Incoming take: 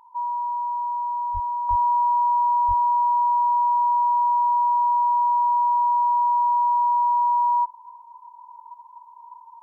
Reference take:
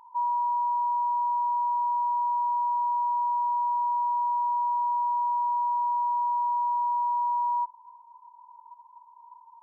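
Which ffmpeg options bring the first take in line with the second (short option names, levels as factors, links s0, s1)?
-filter_complex "[0:a]asplit=3[s0][s1][s2];[s0]afade=t=out:st=1.33:d=0.02[s3];[s1]highpass=f=140:w=0.5412,highpass=f=140:w=1.3066,afade=t=in:st=1.33:d=0.02,afade=t=out:st=1.45:d=0.02[s4];[s2]afade=t=in:st=1.45:d=0.02[s5];[s3][s4][s5]amix=inputs=3:normalize=0,asplit=3[s6][s7][s8];[s6]afade=t=out:st=1.69:d=0.02[s9];[s7]highpass=f=140:w=0.5412,highpass=f=140:w=1.3066,afade=t=in:st=1.69:d=0.02,afade=t=out:st=1.81:d=0.02[s10];[s8]afade=t=in:st=1.81:d=0.02[s11];[s9][s10][s11]amix=inputs=3:normalize=0,asplit=3[s12][s13][s14];[s12]afade=t=out:st=2.67:d=0.02[s15];[s13]highpass=f=140:w=0.5412,highpass=f=140:w=1.3066,afade=t=in:st=2.67:d=0.02,afade=t=out:st=2.79:d=0.02[s16];[s14]afade=t=in:st=2.79:d=0.02[s17];[s15][s16][s17]amix=inputs=3:normalize=0,asetnsamples=n=441:p=0,asendcmd='1.69 volume volume -6.5dB',volume=1"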